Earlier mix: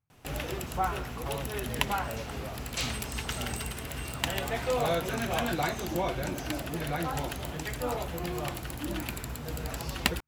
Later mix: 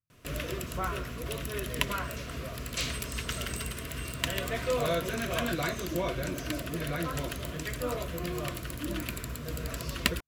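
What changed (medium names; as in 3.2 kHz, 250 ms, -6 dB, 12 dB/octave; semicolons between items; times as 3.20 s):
speech -8.5 dB; master: add Butterworth band-stop 820 Hz, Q 3.1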